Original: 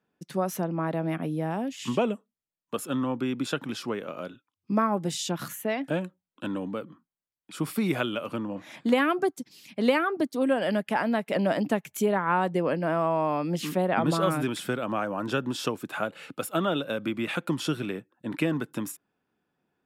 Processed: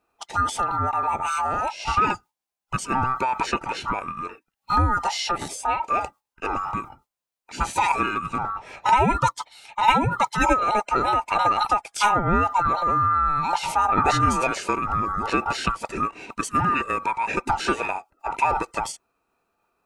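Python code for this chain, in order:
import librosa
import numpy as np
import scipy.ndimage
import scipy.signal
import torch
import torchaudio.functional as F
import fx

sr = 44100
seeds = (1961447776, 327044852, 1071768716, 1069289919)

y = fx.band_swap(x, sr, width_hz=1000)
y = fx.formant_shift(y, sr, semitones=-6)
y = y * 10.0 ** (5.0 / 20.0)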